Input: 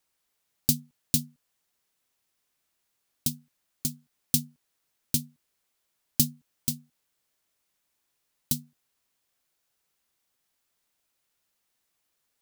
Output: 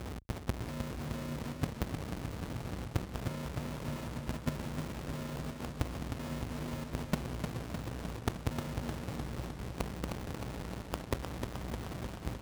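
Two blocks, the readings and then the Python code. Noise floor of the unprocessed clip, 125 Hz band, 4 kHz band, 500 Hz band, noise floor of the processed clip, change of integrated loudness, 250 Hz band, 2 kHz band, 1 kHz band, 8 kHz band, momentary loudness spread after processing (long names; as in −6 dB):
−78 dBFS, +3.0 dB, −8.0 dB, +16.5 dB, −45 dBFS, −10.5 dB, 0.0 dB, +12.5 dB, can't be measured, −16.5 dB, 4 LU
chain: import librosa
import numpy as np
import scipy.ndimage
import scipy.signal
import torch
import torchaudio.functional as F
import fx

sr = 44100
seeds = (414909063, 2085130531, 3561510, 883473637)

y = x + 0.5 * 10.0 ** (-26.0 / 20.0) * np.sign(x)
y = scipy.signal.savgol_filter(y, 65, 4, mode='constant')
y = y + 10.0 ** (-13.5 / 20.0) * np.pad(y, (int(313 * sr / 1000.0), 0))[:len(y)]
y = fx.add_hum(y, sr, base_hz=60, snr_db=12)
y = fx.step_gate(y, sr, bpm=158, pattern='xx.x.xxxxxxxxx', floor_db=-24.0, edge_ms=4.5)
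y = fx.schmitt(y, sr, flips_db=-39.5)
y = fx.level_steps(y, sr, step_db=18)
y = scipy.signal.sosfilt(scipy.signal.butter(2, 53.0, 'highpass', fs=sr, output='sos'), y)
y = fx.echo_warbled(y, sr, ms=307, feedback_pct=70, rate_hz=2.8, cents=66, wet_db=-6.0)
y = y * 10.0 ** (14.0 / 20.0)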